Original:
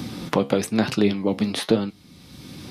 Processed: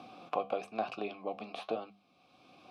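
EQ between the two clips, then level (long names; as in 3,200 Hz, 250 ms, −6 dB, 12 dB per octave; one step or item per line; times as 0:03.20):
formant filter a
mains-hum notches 50/100/150/200 Hz
0.0 dB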